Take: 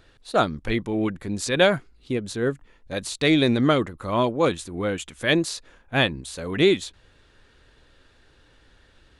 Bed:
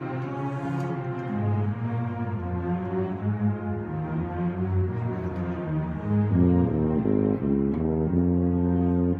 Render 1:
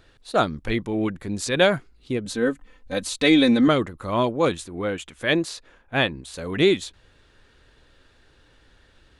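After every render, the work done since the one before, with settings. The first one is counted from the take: 2.25–3.68 comb 3.9 ms, depth 78%; 4.65–6.34 tone controls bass -3 dB, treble -5 dB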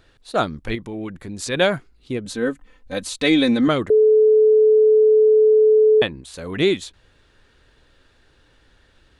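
0.75–1.39 compressor 2:1, threshold -30 dBFS; 3.9–6.02 bleep 432 Hz -10 dBFS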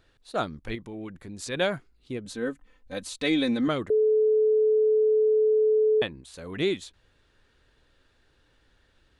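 gain -8 dB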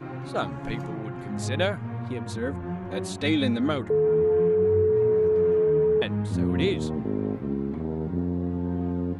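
add bed -5 dB

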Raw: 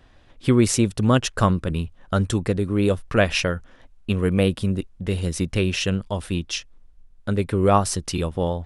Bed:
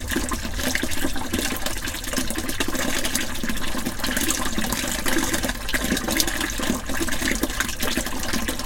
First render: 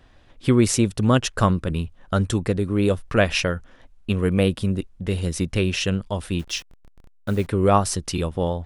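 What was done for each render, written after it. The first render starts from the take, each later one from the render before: 6.39–7.47 level-crossing sampler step -40.5 dBFS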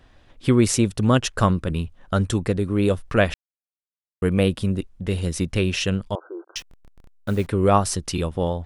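3.34–4.22 mute; 6.15–6.56 brick-wall FIR band-pass 320–1600 Hz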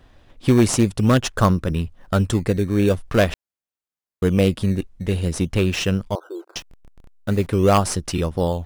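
in parallel at -9.5 dB: decimation with a swept rate 15×, swing 100% 0.46 Hz; on the sum: wavefolder -6 dBFS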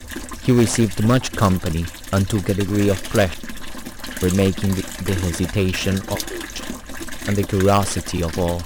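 add bed -6.5 dB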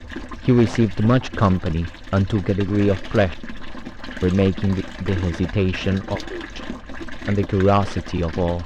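air absorption 210 m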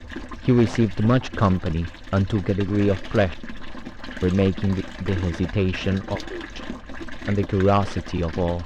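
gain -2 dB

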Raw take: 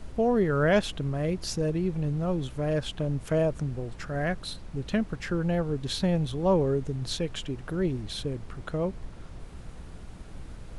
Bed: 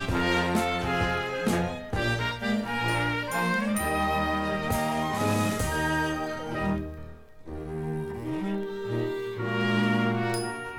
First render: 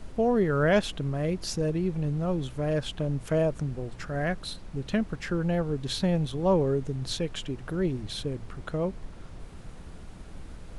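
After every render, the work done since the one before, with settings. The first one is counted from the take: de-hum 60 Hz, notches 2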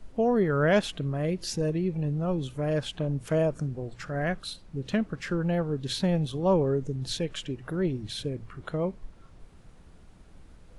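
noise print and reduce 9 dB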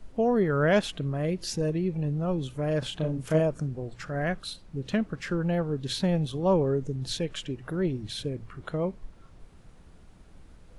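2.79–3.4 doubler 32 ms -4 dB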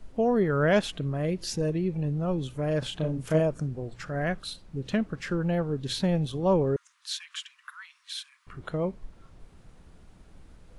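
6.76–8.47 steep high-pass 1000 Hz 96 dB/oct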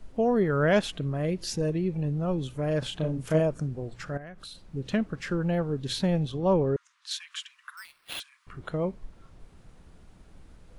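4.17–4.61 compressor 16:1, threshold -39 dBFS; 6.23–7.11 air absorption 55 m; 7.77–8.2 sample-rate reducer 6800 Hz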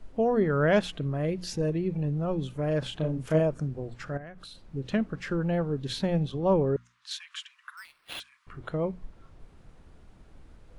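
high shelf 4700 Hz -6.5 dB; notches 60/120/180/240 Hz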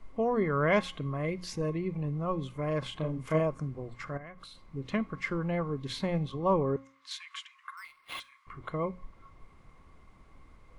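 resonator 270 Hz, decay 0.48 s, harmonics all, mix 40%; small resonant body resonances 1100/2100 Hz, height 17 dB, ringing for 35 ms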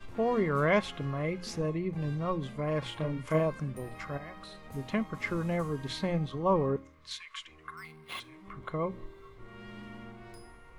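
add bed -22 dB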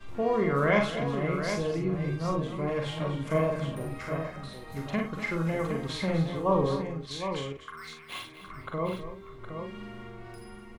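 doubler 43 ms -5 dB; tapped delay 54/247/764 ms -7/-12/-7.5 dB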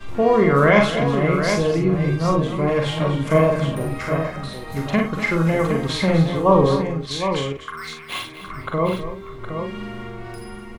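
gain +10.5 dB; limiter -2 dBFS, peak gain reduction 2 dB

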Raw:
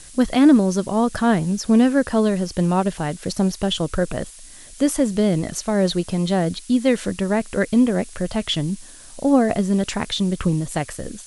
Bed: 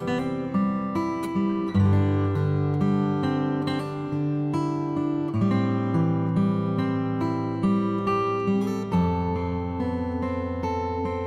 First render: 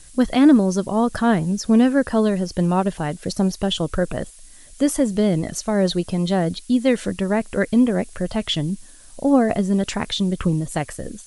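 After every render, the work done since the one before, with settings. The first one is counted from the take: denoiser 6 dB, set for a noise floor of -42 dBFS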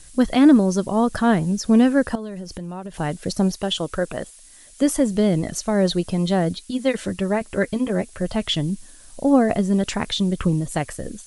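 2.15–2.94 compressor, threshold -29 dBFS; 3.56–4.82 low shelf 210 Hz -9.5 dB; 6.53–8.22 notch comb 240 Hz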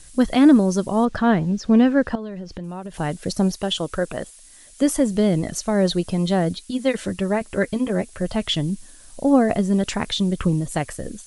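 1.05–2.64 LPF 4200 Hz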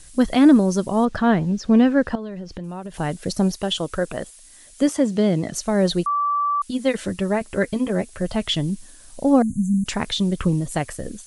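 4.88–5.54 BPF 110–7200 Hz; 6.06–6.62 bleep 1160 Hz -18 dBFS; 9.42–9.86 brick-wall FIR band-stop 280–6100 Hz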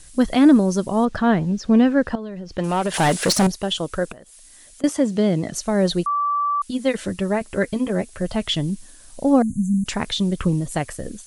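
2.58–3.47 overdrive pedal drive 26 dB, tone 7800 Hz, clips at -8.5 dBFS; 4.12–4.84 compressor, threshold -41 dBFS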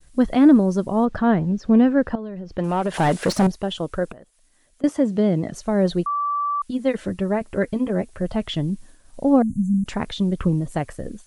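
expander -40 dBFS; high shelf 2600 Hz -12 dB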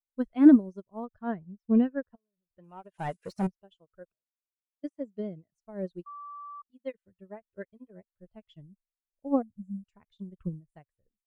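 per-bin expansion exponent 1.5; upward expander 2.5:1, over -40 dBFS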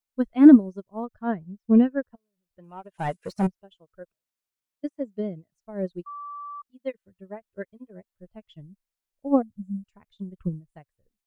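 gain +5.5 dB; limiter -3 dBFS, peak gain reduction 2 dB

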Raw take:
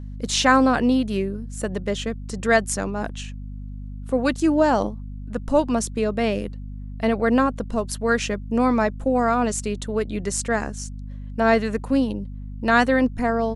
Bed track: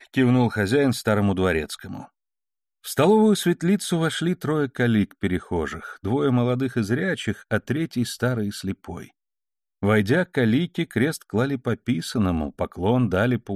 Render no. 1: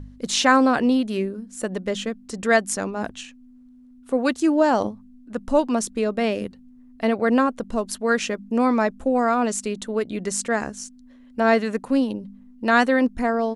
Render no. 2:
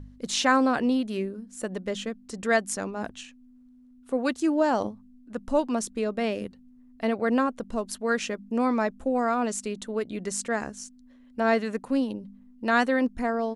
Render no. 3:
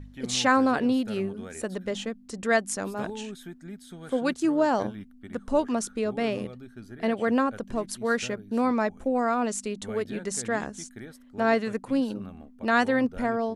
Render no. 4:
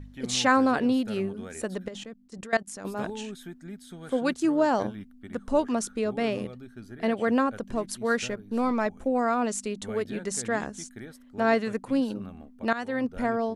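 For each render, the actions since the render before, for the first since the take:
de-hum 50 Hz, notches 4
gain -5 dB
add bed track -21 dB
1.88–2.85 level quantiser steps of 20 dB; 8.28–8.86 half-wave gain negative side -3 dB; 12.73–13.23 fade in, from -16.5 dB

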